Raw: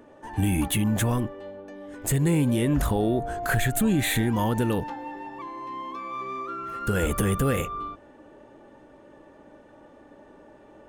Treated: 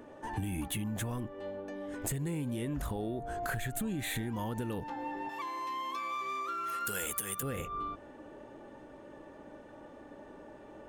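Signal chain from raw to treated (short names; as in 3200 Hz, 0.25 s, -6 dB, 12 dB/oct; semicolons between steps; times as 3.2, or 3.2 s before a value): 5.29–7.43 tilt +4 dB/oct; compressor 5:1, threshold -34 dBFS, peak gain reduction 16.5 dB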